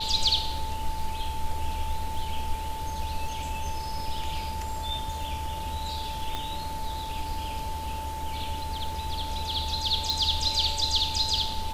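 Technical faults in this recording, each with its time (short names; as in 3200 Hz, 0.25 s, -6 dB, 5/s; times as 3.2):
crackle 18/s -35 dBFS
tone 880 Hz -34 dBFS
6.35 pop -17 dBFS
10.1 pop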